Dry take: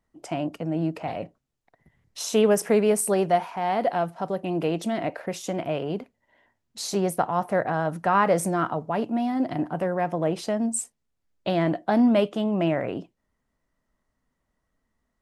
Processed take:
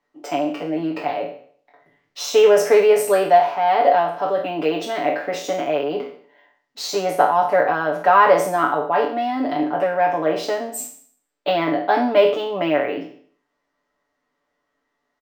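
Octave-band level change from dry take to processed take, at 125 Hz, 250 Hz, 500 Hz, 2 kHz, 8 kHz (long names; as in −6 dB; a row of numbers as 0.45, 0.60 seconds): −7.0, −1.0, +7.5, +9.0, −0.5 decibels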